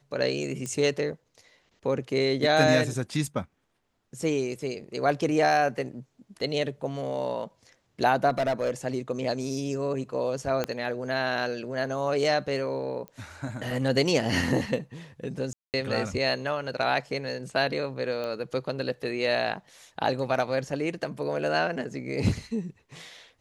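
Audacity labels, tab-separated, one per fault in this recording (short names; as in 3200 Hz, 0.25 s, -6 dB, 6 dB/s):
0.660000	0.660000	pop -21 dBFS
8.290000	8.710000	clipped -21.5 dBFS
10.640000	10.640000	pop -13 dBFS
13.080000	13.080000	pop -25 dBFS
15.530000	15.740000	gap 0.208 s
18.240000	18.240000	pop -21 dBFS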